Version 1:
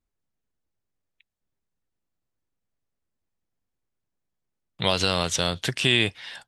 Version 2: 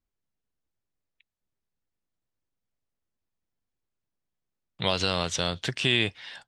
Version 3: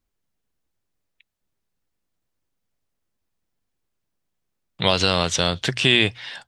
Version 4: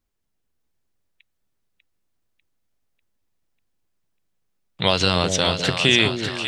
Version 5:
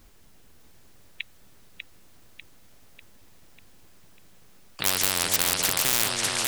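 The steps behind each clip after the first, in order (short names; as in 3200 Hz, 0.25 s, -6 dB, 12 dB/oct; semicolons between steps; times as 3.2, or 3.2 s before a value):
LPF 7200 Hz 12 dB/oct; gain -3 dB
notches 60/120 Hz; gain +7 dB
split-band echo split 630 Hz, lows 0.204 s, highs 0.595 s, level -6 dB
one-sided fold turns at -14.5 dBFS; spectral compressor 10:1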